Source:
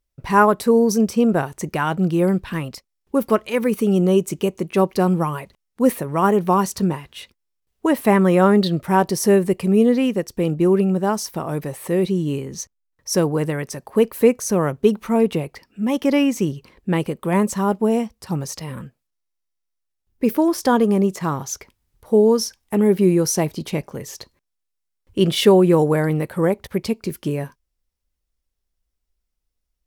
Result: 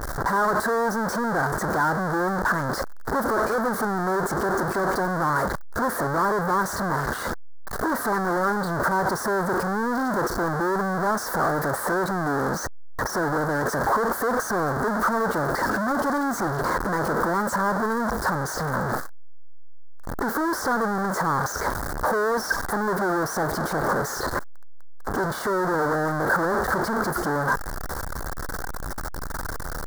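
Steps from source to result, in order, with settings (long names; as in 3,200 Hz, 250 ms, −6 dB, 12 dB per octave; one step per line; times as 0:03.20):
sign of each sample alone
brickwall limiter −23.5 dBFS, peak gain reduction 15 dB
drawn EQ curve 110 Hz 0 dB, 1,600 Hz +15 dB, 2,600 Hz −22 dB, 4,400 Hz −3 dB
level −7 dB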